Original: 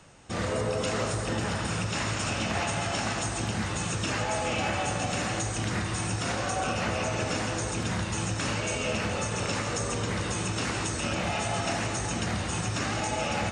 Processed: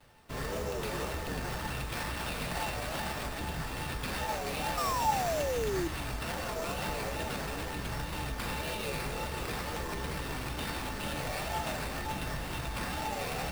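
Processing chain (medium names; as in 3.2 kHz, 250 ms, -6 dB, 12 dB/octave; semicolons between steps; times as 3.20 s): wow and flutter 140 cents; painted sound fall, 4.77–5.88 s, 370–1300 Hz -26 dBFS; sample-rate reducer 6.7 kHz, jitter 20%; feedback comb 910 Hz, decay 0.3 s, mix 80%; frequency shift -46 Hz; trim +7 dB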